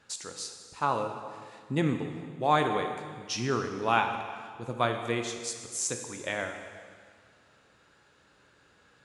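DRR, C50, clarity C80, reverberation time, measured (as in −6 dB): 5.0 dB, 6.5 dB, 8.0 dB, 1.9 s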